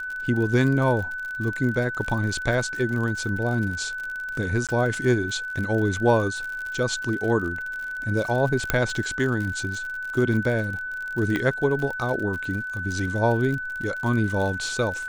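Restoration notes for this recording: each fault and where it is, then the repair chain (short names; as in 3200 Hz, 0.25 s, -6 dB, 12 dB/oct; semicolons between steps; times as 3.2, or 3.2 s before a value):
crackle 58/s -30 dBFS
tone 1500 Hz -29 dBFS
4.67–4.69 gap 17 ms
8.7 pop -6 dBFS
11.36 pop -14 dBFS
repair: de-click; notch 1500 Hz, Q 30; interpolate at 4.67, 17 ms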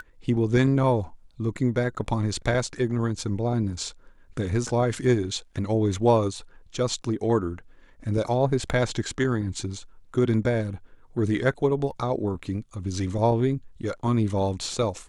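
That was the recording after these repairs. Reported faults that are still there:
8.7 pop
11.36 pop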